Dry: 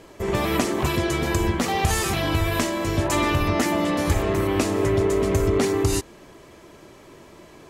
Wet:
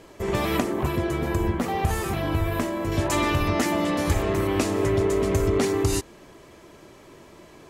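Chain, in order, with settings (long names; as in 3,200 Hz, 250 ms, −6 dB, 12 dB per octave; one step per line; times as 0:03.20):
0:00.60–0:02.92: parametric band 5,400 Hz −10.5 dB 2.5 octaves
level −1.5 dB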